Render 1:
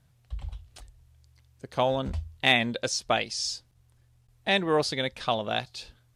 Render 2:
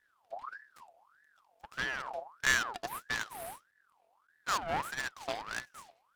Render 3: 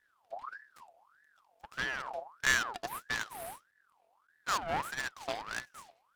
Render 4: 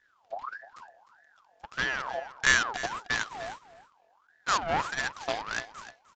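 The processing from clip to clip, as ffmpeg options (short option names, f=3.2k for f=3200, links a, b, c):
-af "equalizer=f=160:t=o:w=0.33:g=-7,equalizer=f=630:t=o:w=0.33:g=-7,equalizer=f=2k:t=o:w=0.33:g=7,equalizer=f=5k:t=o:w=0.33:g=-4,equalizer=f=8k:t=o:w=0.33:g=-5,aeval=exprs='abs(val(0))':c=same,aeval=exprs='val(0)*sin(2*PI*1200*n/s+1200*0.45/1.6*sin(2*PI*1.6*n/s))':c=same,volume=-5.5dB"
-af anull
-af "aecho=1:1:304:0.168,aresample=16000,aresample=44100,volume=5.5dB"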